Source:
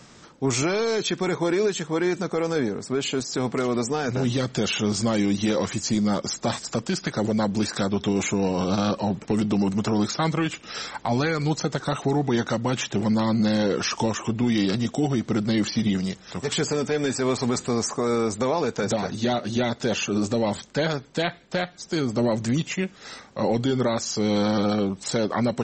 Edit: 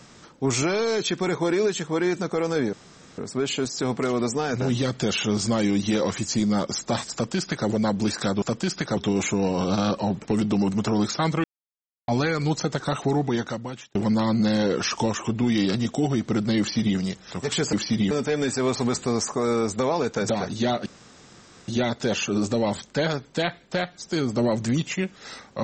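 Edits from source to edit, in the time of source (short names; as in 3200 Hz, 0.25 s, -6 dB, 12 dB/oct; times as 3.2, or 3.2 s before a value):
2.73 insert room tone 0.45 s
6.68–7.23 copy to 7.97
10.44–11.08 mute
12.18–12.95 fade out
15.59–15.97 copy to 16.73
19.48 insert room tone 0.82 s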